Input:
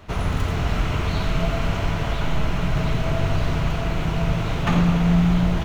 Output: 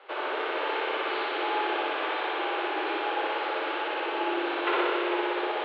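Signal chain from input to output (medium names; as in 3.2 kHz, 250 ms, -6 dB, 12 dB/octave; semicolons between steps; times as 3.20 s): flutter echo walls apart 10.3 m, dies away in 1.4 s; mistuned SSB +180 Hz 210–3500 Hz; trim -3.5 dB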